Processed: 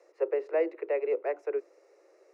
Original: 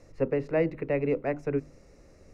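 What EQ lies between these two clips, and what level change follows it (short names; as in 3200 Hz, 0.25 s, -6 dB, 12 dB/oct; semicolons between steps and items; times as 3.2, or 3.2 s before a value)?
steep high-pass 340 Hz 96 dB/oct; high shelf 2200 Hz -9.5 dB; 0.0 dB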